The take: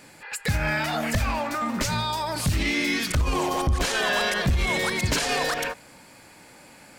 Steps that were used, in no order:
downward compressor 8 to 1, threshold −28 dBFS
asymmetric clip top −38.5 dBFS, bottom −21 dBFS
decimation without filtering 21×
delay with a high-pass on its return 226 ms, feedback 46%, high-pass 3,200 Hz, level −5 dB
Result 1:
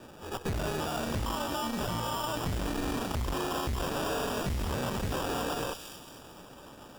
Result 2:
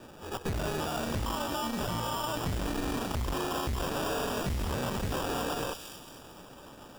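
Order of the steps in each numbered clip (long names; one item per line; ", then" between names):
decimation without filtering, then asymmetric clip, then delay with a high-pass on its return, then downward compressor
asymmetric clip, then decimation without filtering, then delay with a high-pass on its return, then downward compressor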